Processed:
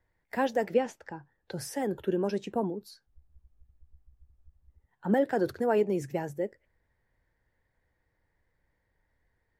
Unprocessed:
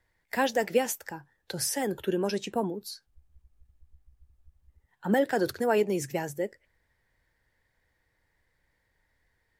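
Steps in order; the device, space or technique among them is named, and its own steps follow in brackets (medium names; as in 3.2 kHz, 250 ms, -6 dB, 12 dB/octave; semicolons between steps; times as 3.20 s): 0.74–1.52 s: low-pass 5.3 kHz 12 dB/octave; through cloth (treble shelf 2 kHz -12 dB)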